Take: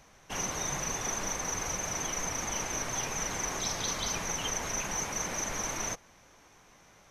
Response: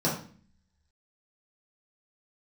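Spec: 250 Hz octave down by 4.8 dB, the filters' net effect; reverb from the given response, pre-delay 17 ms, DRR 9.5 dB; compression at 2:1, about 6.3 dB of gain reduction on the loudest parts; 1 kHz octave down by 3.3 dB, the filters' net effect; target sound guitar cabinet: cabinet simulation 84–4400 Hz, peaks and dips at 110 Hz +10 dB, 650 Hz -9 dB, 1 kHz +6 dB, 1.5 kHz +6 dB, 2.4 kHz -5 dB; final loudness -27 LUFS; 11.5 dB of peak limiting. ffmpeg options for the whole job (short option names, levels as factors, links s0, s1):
-filter_complex "[0:a]equalizer=f=250:t=o:g=-7,equalizer=f=1000:t=o:g=-7,acompressor=threshold=0.00794:ratio=2,alimiter=level_in=5.01:limit=0.0631:level=0:latency=1,volume=0.2,asplit=2[s0][s1];[1:a]atrim=start_sample=2205,adelay=17[s2];[s1][s2]afir=irnorm=-1:irlink=0,volume=0.0944[s3];[s0][s3]amix=inputs=2:normalize=0,highpass=84,equalizer=f=110:t=q:w=4:g=10,equalizer=f=650:t=q:w=4:g=-9,equalizer=f=1000:t=q:w=4:g=6,equalizer=f=1500:t=q:w=4:g=6,equalizer=f=2400:t=q:w=4:g=-5,lowpass=f=4400:w=0.5412,lowpass=f=4400:w=1.3066,volume=12.6"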